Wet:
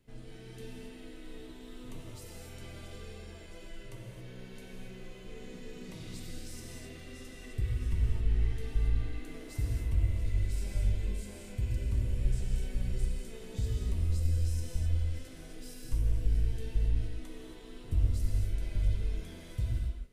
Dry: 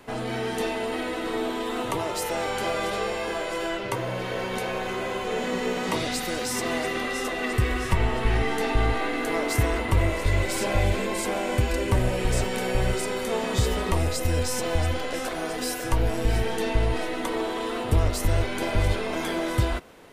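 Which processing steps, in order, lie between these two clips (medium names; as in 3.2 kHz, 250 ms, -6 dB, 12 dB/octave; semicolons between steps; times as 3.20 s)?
amplifier tone stack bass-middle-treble 10-0-1; gated-style reverb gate 300 ms flat, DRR -1 dB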